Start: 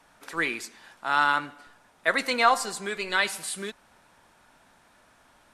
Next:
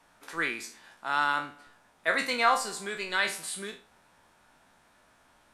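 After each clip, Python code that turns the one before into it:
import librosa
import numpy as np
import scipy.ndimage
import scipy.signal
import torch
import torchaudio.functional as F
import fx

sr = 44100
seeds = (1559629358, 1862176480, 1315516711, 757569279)

y = fx.spec_trails(x, sr, decay_s=0.34)
y = F.gain(torch.from_numpy(y), -4.5).numpy()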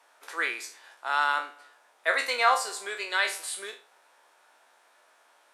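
y = scipy.signal.sosfilt(scipy.signal.butter(4, 410.0, 'highpass', fs=sr, output='sos'), x)
y = F.gain(torch.from_numpy(y), 1.5).numpy()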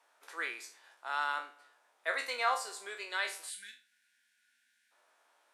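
y = fx.spec_box(x, sr, start_s=3.5, length_s=1.42, low_hz=260.0, high_hz=1400.0, gain_db=-29)
y = F.gain(torch.from_numpy(y), -8.5).numpy()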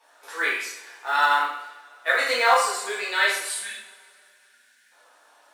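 y = fx.spec_quant(x, sr, step_db=15)
y = fx.rev_double_slope(y, sr, seeds[0], early_s=0.59, late_s=2.6, knee_db=-22, drr_db=-7.5)
y = fx.quant_float(y, sr, bits=4)
y = F.gain(torch.from_numpy(y), 6.0).numpy()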